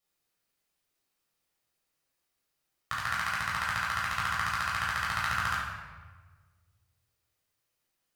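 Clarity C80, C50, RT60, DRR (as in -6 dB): 2.5 dB, 0.0 dB, 1.4 s, -7.0 dB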